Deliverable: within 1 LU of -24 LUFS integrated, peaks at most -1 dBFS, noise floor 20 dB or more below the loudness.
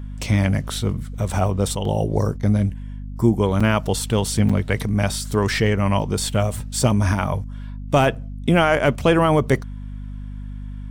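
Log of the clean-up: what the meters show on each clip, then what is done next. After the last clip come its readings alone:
dropouts 3; longest dropout 5.6 ms; hum 50 Hz; highest harmonic 250 Hz; hum level -29 dBFS; loudness -20.5 LUFS; peak level -5.5 dBFS; loudness target -24.0 LUFS
-> interpolate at 3.60/4.49/8.15 s, 5.6 ms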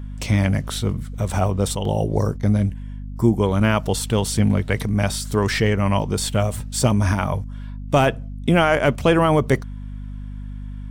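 dropouts 0; hum 50 Hz; highest harmonic 250 Hz; hum level -29 dBFS
-> de-hum 50 Hz, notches 5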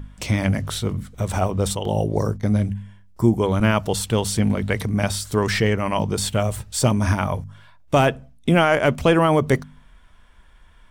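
hum not found; loudness -21.5 LUFS; peak level -5.0 dBFS; loudness target -24.0 LUFS
-> trim -2.5 dB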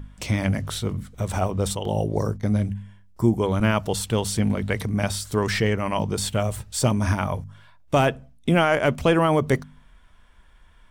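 loudness -24.0 LUFS; peak level -7.5 dBFS; noise floor -52 dBFS

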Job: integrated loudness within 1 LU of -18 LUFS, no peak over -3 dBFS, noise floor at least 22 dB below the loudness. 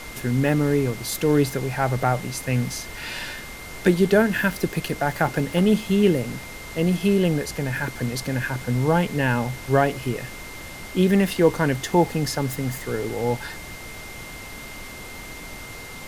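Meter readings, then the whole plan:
steady tone 2.1 kHz; tone level -40 dBFS; noise floor -38 dBFS; noise floor target -45 dBFS; loudness -23.0 LUFS; peak level -5.0 dBFS; loudness target -18.0 LUFS
-> band-stop 2.1 kHz, Q 30; noise print and reduce 7 dB; trim +5 dB; peak limiter -3 dBFS

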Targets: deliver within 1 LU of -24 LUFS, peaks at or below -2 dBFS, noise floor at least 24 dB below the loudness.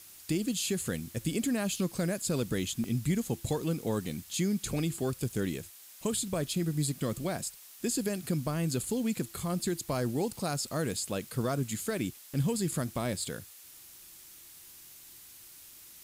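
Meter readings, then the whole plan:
dropouts 4; longest dropout 1.3 ms; noise floor -52 dBFS; noise floor target -57 dBFS; loudness -32.5 LUFS; peak level -18.5 dBFS; loudness target -24.0 LUFS
-> interpolate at 2.84/6.17/10.09/12.34 s, 1.3 ms; noise reduction 6 dB, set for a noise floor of -52 dBFS; trim +8.5 dB

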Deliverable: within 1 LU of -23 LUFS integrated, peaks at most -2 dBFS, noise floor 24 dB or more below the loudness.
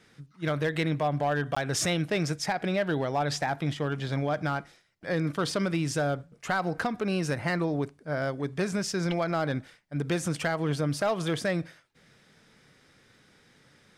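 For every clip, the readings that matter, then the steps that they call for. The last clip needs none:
clipped samples 0.6%; clipping level -20.0 dBFS; dropouts 1; longest dropout 15 ms; loudness -29.5 LUFS; peak level -20.0 dBFS; loudness target -23.0 LUFS
-> clip repair -20 dBFS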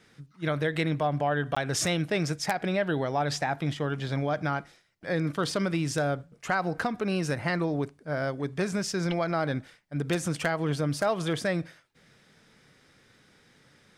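clipped samples 0.0%; dropouts 1; longest dropout 15 ms
-> interpolate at 1.55 s, 15 ms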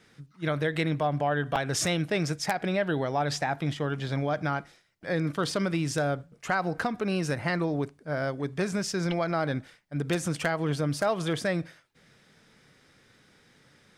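dropouts 0; loudness -29.0 LUFS; peak level -11.0 dBFS; loudness target -23.0 LUFS
-> trim +6 dB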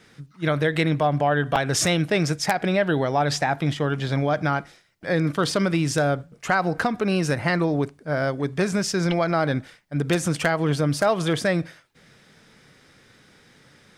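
loudness -23.0 LUFS; peak level -5.0 dBFS; noise floor -55 dBFS

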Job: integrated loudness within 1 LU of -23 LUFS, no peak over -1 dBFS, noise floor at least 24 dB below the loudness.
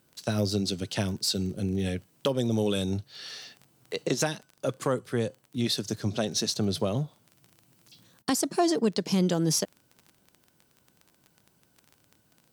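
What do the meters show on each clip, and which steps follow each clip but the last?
tick rate 19 per s; loudness -29.0 LUFS; peak level -10.5 dBFS; loudness target -23.0 LUFS
-> de-click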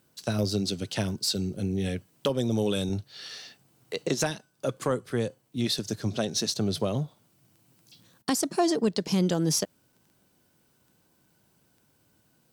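tick rate 0.24 per s; loudness -29.0 LUFS; peak level -10.5 dBFS; loudness target -23.0 LUFS
-> trim +6 dB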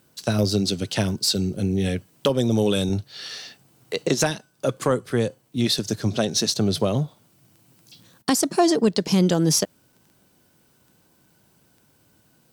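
loudness -23.0 LUFS; peak level -4.5 dBFS; noise floor -61 dBFS

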